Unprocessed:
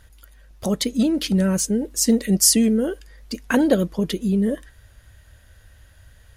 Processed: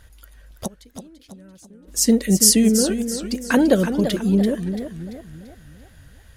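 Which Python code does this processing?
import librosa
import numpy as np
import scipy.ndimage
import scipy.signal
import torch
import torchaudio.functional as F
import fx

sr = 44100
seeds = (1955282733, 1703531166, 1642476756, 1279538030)

y = fx.gate_flip(x, sr, shuts_db=-16.0, range_db=-28, at=(0.66, 1.87), fade=0.02)
y = fx.echo_warbled(y, sr, ms=335, feedback_pct=43, rate_hz=2.8, cents=139, wet_db=-9)
y = y * librosa.db_to_amplitude(1.5)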